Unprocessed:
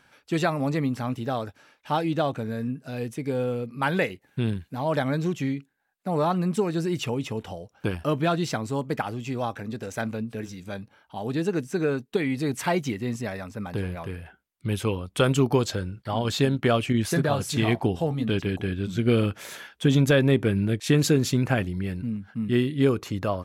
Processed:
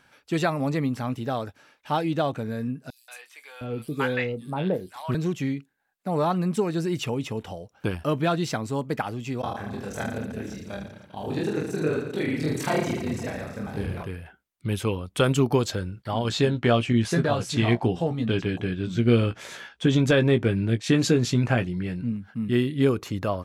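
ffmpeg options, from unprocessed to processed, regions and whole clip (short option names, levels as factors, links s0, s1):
-filter_complex "[0:a]asettb=1/sr,asplit=3[s0][s1][s2];[s0]atrim=end=2.904[s3];[s1]atrim=start=2.9:end=5.15,asetpts=PTS-STARTPTS,afade=t=in:d=0.004:c=qsin,afade=t=out:st=2.246:d=0.004:c=qsin,asplit=2[s4][s5];[s5]adelay=27,volume=0.224[s6];[s4][s6]amix=inputs=2:normalize=0,atrim=end_sample=99225,acrossover=split=930|5300[s7][s8][s9];[s8]adelay=180[s10];[s7]adelay=710[s11];[s11][s10][s9]amix=inputs=3:normalize=0,atrim=end_sample=99225[s12];[s2]atrim=start=5.146[s13];[s3][s12]acrossfade=d=0.004:c1=hsin:c2=qsin[s14];[s14][s13]acrossfade=d=0.004:c1=qsin:c2=hsin,asettb=1/sr,asplit=3[s15][s16][s17];[s15]atrim=end=9.414[s18];[s16]atrim=start=9.41:end=14.03,asetpts=PTS-STARTPTS,afade=t=in:d=0.004:c=qsin,afade=t=out:st=4.616:d=0.004:c=qsin,tremolo=f=30:d=1,aecho=1:1:20|45|76.25|115.3|164.1|225.2|301.5|396.8|516:0.794|0.631|0.501|0.398|0.316|0.251|0.2|0.158|0.126,atrim=end_sample=203742[s19];[s17]atrim=start=14.026[s20];[s18][s19]acrossfade=d=0.004:c1=hsin:c2=qsin[s21];[s21][s20]acrossfade=d=0.004:c1=qsin:c2=hsin,asettb=1/sr,asplit=3[s22][s23][s24];[s22]atrim=end=16.294[s25];[s23]atrim=start=16.29:end=22.12,asetpts=PTS-STARTPTS,afade=t=in:d=0.004:c=qsin,afade=t=out:st=5.826:d=0.004:c=qsin,lowpass=7600,asplit=2[s26][s27];[s27]adelay=17,volume=0.398[s28];[s26][s28]amix=inputs=2:normalize=0,atrim=end_sample=257103[s29];[s24]atrim=start=22.116[s30];[s25][s29]acrossfade=d=0.004:c1=hsin:c2=qsin[s31];[s31][s30]acrossfade=d=0.004:c1=qsin:c2=hsin"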